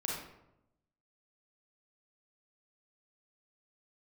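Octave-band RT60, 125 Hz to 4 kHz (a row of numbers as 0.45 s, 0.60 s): 1.2 s, 1.1 s, 0.90 s, 0.80 s, 0.65 s, 0.50 s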